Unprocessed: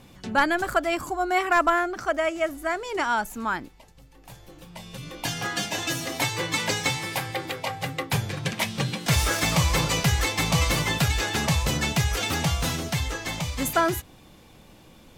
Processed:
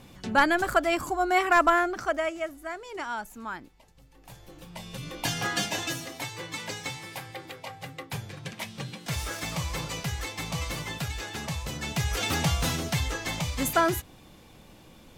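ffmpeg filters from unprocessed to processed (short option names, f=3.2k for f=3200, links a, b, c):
-af "volume=18dB,afade=t=out:st=1.87:d=0.67:silence=0.354813,afade=t=in:st=3.6:d=1.17:silence=0.354813,afade=t=out:st=5.62:d=0.52:silence=0.316228,afade=t=in:st=11.78:d=0.52:silence=0.354813"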